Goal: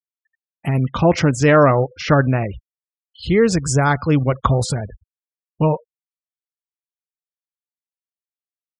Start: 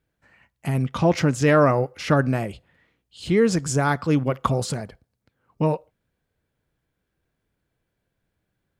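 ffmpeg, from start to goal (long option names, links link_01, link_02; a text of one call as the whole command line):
ffmpeg -i in.wav -af "afftfilt=real='re*gte(hypot(re,im),0.0158)':imag='im*gte(hypot(re,im),0.0158)':win_size=1024:overlap=0.75,asubboost=boost=4:cutoff=100,volume=5dB" out.wav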